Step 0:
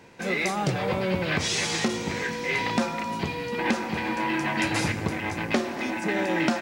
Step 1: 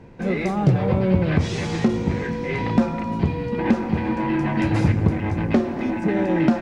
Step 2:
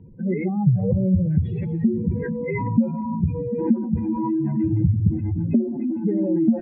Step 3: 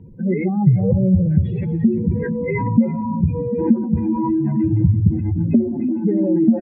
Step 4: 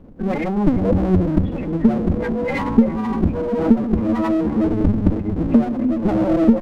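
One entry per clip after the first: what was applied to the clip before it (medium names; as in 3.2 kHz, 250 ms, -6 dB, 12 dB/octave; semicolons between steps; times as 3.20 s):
tilt EQ -4 dB/octave
spectral contrast enhancement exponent 2.8; resonant high shelf 4.1 kHz -12 dB, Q 3
echo from a far wall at 59 m, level -18 dB; trim +4 dB
comb filter that takes the minimum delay 3.8 ms; trim +2 dB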